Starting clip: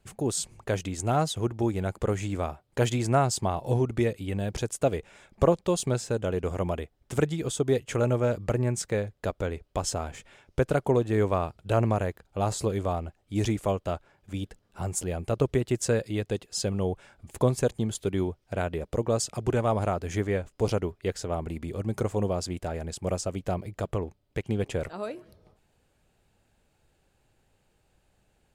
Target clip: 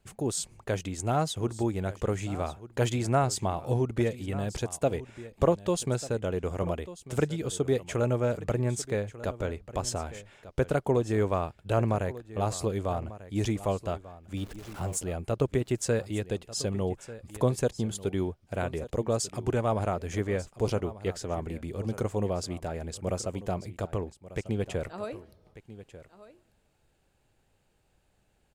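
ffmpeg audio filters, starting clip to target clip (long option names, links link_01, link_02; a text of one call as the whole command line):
ffmpeg -i in.wav -filter_complex "[0:a]asettb=1/sr,asplit=3[link_01][link_02][link_03];[link_01]atrim=end=14.374[link_04];[link_02]atrim=start=14.37:end=14.98,asetpts=PTS-STARTPTS,afade=type=in:duration=0.004:curve=qsin,afade=type=out:start_time=0.606:duration=0.004:curve=qsin,aeval=exprs='val(0)+0.5*0.01*sgn(val(0))':channel_layout=same[link_05];[link_03]atrim=start=14.976[link_06];[link_04][link_05]acrossfade=duration=0.004:curve1=hsin:curve2=qsin[link_07];[link_07][link_06]acrossfade=duration=0.004:curve1=qsin:curve2=hsin,aecho=1:1:1193:0.158,volume=-2dB" out.wav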